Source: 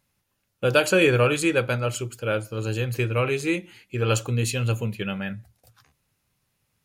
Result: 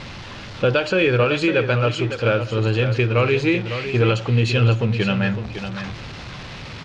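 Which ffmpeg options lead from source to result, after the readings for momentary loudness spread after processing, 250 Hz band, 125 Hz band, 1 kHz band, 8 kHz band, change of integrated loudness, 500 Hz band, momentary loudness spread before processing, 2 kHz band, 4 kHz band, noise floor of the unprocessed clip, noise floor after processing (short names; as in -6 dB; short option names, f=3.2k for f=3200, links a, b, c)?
17 LU, +5.5 dB, +6.5 dB, +4.5 dB, n/a, +4.5 dB, +4.0 dB, 11 LU, +3.5 dB, +4.5 dB, -75 dBFS, -35 dBFS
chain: -filter_complex "[0:a]aeval=exprs='val(0)+0.5*0.02*sgn(val(0))':c=same,lowpass=f=4.6k:w=0.5412,lowpass=f=4.6k:w=1.3066,alimiter=limit=-16.5dB:level=0:latency=1:release=315,asplit=2[a][b];[b]aecho=0:1:555:0.335[c];[a][c]amix=inputs=2:normalize=0,volume=7.5dB"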